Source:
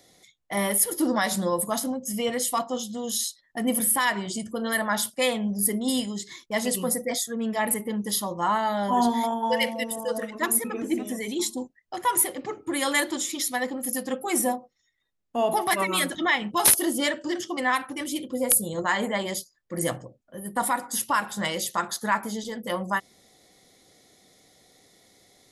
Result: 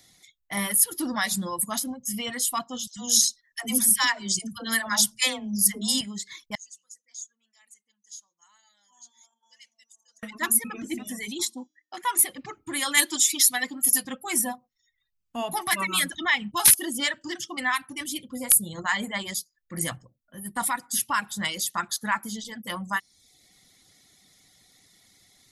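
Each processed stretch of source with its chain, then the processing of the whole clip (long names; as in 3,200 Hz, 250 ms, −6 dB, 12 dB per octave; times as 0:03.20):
0:02.87–0:06.01: parametric band 5,900 Hz +12 dB 0.7 octaves + all-pass dispersion lows, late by 99 ms, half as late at 610 Hz
0:06.55–0:10.23: resonant band-pass 6,600 Hz, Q 10 + high-frequency loss of the air 72 metres
0:11.45–0:12.19: high-pass filter 230 Hz 24 dB per octave + high-shelf EQ 8,100 Hz −9 dB + hum removal 305.9 Hz, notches 22
0:12.97–0:14.05: high-pass filter 140 Hz 24 dB per octave + high-shelf EQ 2,800 Hz +7.5 dB + comb filter 6.6 ms, depth 48%
whole clip: reverb reduction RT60 0.63 s; parametric band 490 Hz −14.5 dB 1.5 octaves; level +2.5 dB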